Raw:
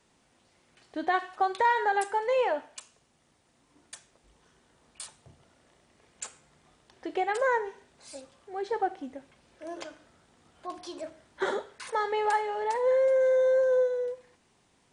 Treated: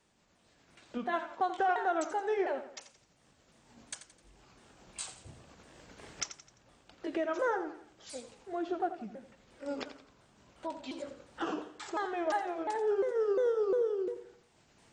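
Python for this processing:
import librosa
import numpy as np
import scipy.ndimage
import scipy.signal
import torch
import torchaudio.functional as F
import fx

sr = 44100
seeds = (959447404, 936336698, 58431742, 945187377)

y = fx.pitch_ramps(x, sr, semitones=-5.5, every_ms=352)
y = fx.recorder_agc(y, sr, target_db=-23.5, rise_db_per_s=8.7, max_gain_db=30)
y = fx.echo_feedback(y, sr, ms=86, feedback_pct=41, wet_db=-12)
y = y * librosa.db_to_amplitude(-4.5)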